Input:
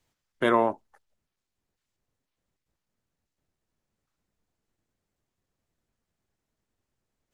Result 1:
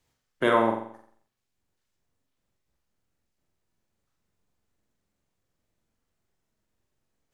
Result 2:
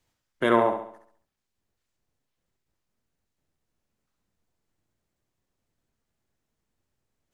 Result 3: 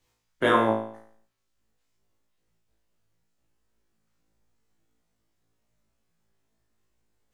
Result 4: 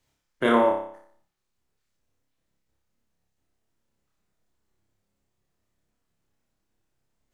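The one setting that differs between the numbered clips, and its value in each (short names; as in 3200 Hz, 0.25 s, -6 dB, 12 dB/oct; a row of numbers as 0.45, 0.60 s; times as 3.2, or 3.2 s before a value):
flutter echo, walls apart: 7.6, 11.7, 3.1, 5.1 m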